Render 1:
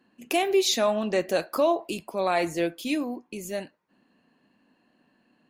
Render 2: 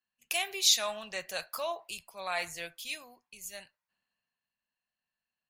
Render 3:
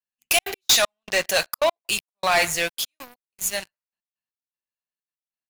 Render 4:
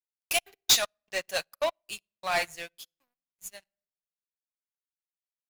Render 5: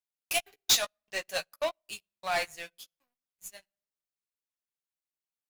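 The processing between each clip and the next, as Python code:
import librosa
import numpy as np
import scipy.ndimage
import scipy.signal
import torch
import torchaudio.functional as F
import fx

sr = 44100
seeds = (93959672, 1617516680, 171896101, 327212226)

y1 = fx.tone_stack(x, sr, knobs='10-0-10')
y1 = fx.band_widen(y1, sr, depth_pct=40)
y2 = fx.leveller(y1, sr, passes=5)
y2 = fx.step_gate(y2, sr, bpm=195, pattern='xxxxx.x..xx...x', floor_db=-60.0, edge_ms=4.5)
y3 = fx.room_shoebox(y2, sr, seeds[0], volume_m3=2300.0, walls='furnished', distance_m=0.31)
y3 = fx.upward_expand(y3, sr, threshold_db=-37.0, expansion=2.5)
y3 = y3 * librosa.db_to_amplitude(-2.5)
y4 = fx.chorus_voices(y3, sr, voices=2, hz=0.47, base_ms=13, depth_ms=3.4, mix_pct=30)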